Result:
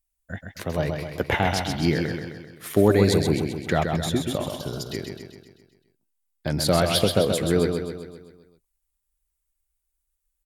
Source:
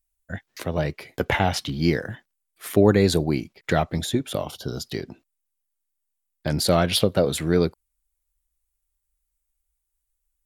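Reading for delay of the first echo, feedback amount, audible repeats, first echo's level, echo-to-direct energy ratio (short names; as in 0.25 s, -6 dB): 0.13 s, 54%, 6, -5.5 dB, -4.0 dB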